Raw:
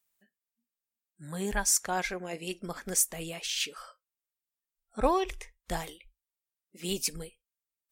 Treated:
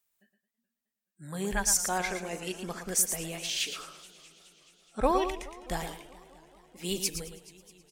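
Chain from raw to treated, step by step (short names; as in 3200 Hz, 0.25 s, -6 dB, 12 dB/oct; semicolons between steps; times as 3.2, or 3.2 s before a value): echo 0.115 s -8.5 dB; warbling echo 0.212 s, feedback 72%, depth 198 cents, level -19.5 dB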